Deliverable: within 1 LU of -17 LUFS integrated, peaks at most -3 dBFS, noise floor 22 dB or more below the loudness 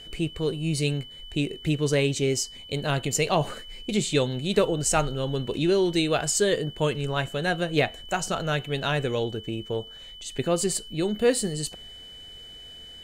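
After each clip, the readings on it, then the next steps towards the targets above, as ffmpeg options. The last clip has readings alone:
steady tone 3 kHz; tone level -42 dBFS; loudness -26.0 LUFS; peak level -7.0 dBFS; loudness target -17.0 LUFS
-> -af "bandreject=f=3000:w=30"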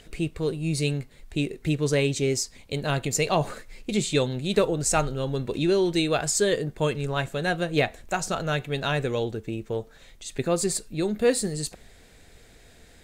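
steady tone not found; loudness -26.5 LUFS; peak level -7.5 dBFS; loudness target -17.0 LUFS
-> -af "volume=2.99,alimiter=limit=0.708:level=0:latency=1"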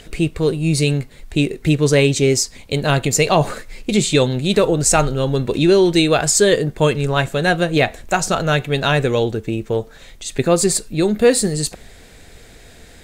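loudness -17.0 LUFS; peak level -3.0 dBFS; noise floor -43 dBFS

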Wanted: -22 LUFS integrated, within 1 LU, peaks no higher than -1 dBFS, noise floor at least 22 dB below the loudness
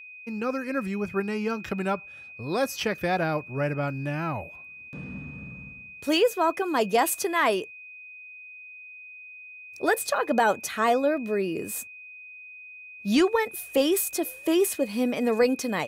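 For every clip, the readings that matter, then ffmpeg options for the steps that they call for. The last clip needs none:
steady tone 2.5 kHz; tone level -42 dBFS; loudness -26.0 LUFS; peak level -12.0 dBFS; loudness target -22.0 LUFS
-> -af "bandreject=f=2500:w=30"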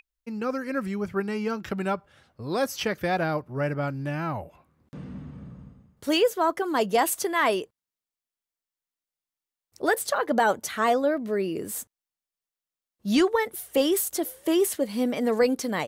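steady tone not found; loudness -26.0 LUFS; peak level -12.0 dBFS; loudness target -22.0 LUFS
-> -af "volume=1.58"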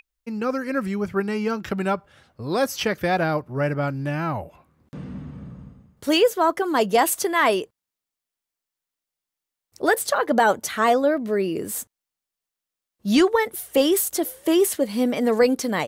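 loudness -22.0 LUFS; peak level -8.0 dBFS; noise floor -87 dBFS

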